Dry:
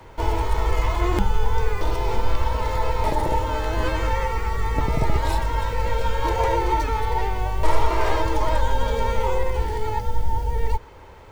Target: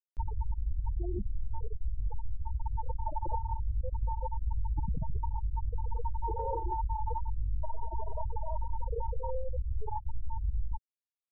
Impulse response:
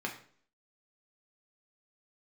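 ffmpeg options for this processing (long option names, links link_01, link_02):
-af "lowpass=frequency=1100:width=0.5412,lowpass=frequency=1100:width=1.3066,aemphasis=mode=production:type=75kf,afftfilt=real='re*gte(hypot(re,im),0.398)':imag='im*gte(hypot(re,im),0.398)':win_size=1024:overlap=0.75,acompressor=threshold=-25dB:ratio=6,alimiter=limit=-24dB:level=0:latency=1:release=126,acompressor=mode=upward:threshold=-43dB:ratio=2.5"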